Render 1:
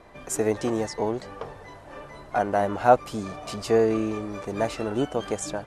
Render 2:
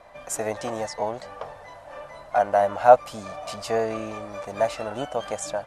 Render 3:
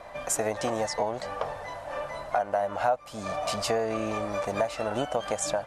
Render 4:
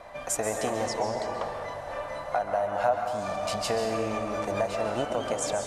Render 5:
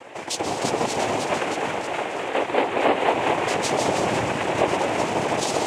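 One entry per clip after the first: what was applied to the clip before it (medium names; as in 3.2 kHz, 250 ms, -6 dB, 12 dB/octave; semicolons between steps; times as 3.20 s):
resonant low shelf 480 Hz -6 dB, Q 3
compression 5:1, threshold -30 dBFS, peak gain reduction 20 dB; trim +5.5 dB
plate-style reverb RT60 1.8 s, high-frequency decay 0.6×, pre-delay 120 ms, DRR 3.5 dB; trim -1.5 dB
ever faster or slower copies 361 ms, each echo +1 st, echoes 3; noise-vocoded speech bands 4; trim +4 dB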